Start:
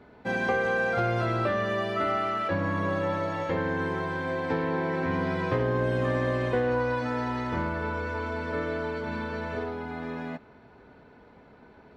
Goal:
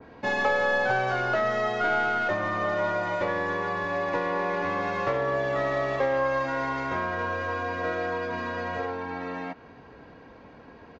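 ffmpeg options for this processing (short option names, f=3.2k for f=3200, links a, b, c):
-filter_complex "[0:a]acrossover=split=450|1400[a][b][c];[a]acompressor=threshold=-41dB:ratio=6[d];[c]aeval=exprs='clip(val(0),-1,0.00794)':c=same[e];[d][b][e]amix=inputs=3:normalize=0,asetrate=48000,aresample=44100,aresample=16000,aresample=44100,adynamicequalizer=threshold=0.00562:dfrequency=2200:dqfactor=0.7:tfrequency=2200:tqfactor=0.7:attack=5:release=100:ratio=0.375:range=2:mode=cutabove:tftype=highshelf,volume=4.5dB"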